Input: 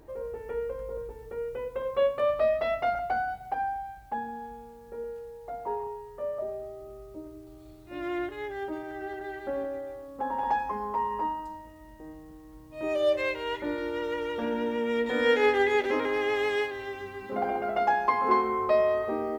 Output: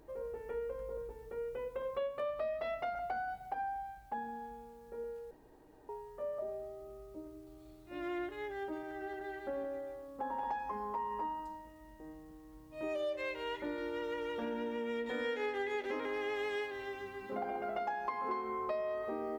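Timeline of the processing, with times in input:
0:05.31–0:05.89: fill with room tone
whole clip: parametric band 90 Hz −5.5 dB 0.7 octaves; downward compressor 5 to 1, threshold −29 dBFS; level −5.5 dB

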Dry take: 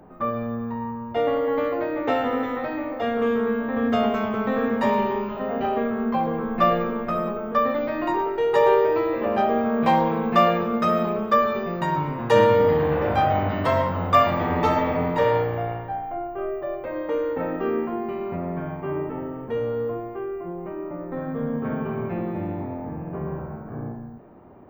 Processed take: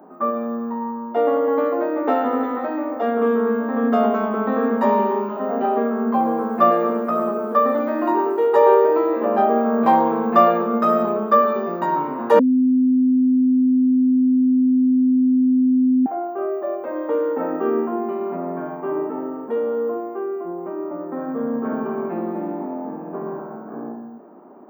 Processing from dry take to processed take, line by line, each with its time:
0:06.02–0:08.47: feedback echo at a low word length 112 ms, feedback 55%, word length 8 bits, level −11 dB
0:12.39–0:16.06: beep over 256 Hz −17 dBFS
whole clip: Butterworth high-pass 210 Hz 36 dB per octave; flat-topped bell 4,100 Hz −11.5 dB 2.5 octaves; notch filter 510 Hz, Q 17; level +4.5 dB

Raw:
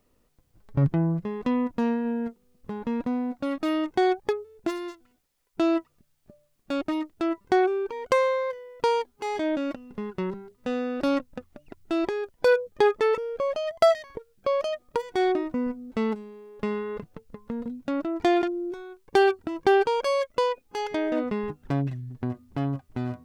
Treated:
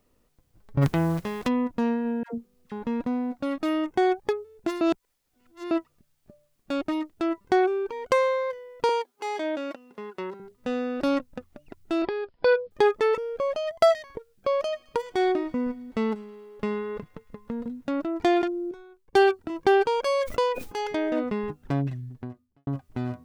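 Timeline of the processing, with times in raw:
0:00.81–0:01.47: compressing power law on the bin magnitudes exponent 0.65
0:02.23–0:02.72: all-pass dispersion lows, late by 112 ms, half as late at 630 Hz
0:03.66–0:04.15: parametric band 4,200 Hz −5.5 dB 0.54 octaves
0:04.81–0:05.71: reverse
0:08.89–0:10.40: high-pass filter 380 Hz
0:12.02–0:12.71: Chebyshev low-pass filter 5,200 Hz, order 8
0:14.55–0:17.97: delay with a high-pass on its return 107 ms, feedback 70%, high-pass 1,500 Hz, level −21 dB
0:18.71–0:19.50: multiband upward and downward expander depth 40%
0:20.13–0:21.10: level that may fall only so fast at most 87 dB per second
0:22.05–0:22.67: fade out quadratic

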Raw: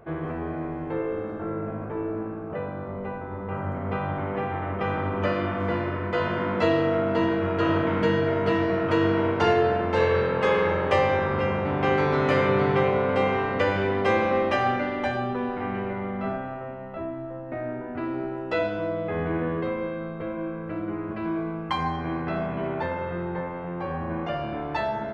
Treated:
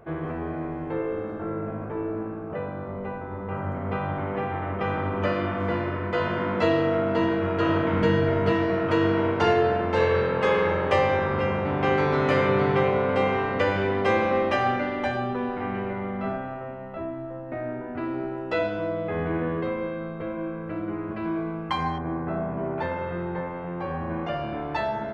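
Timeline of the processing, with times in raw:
0:07.93–0:08.53: low-shelf EQ 120 Hz +8 dB
0:21.98–0:22.78: low-pass filter 1,300 Hz

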